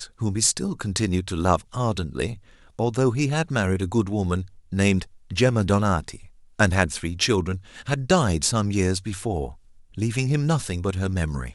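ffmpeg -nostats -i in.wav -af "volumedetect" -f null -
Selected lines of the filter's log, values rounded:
mean_volume: -23.8 dB
max_volume: -2.5 dB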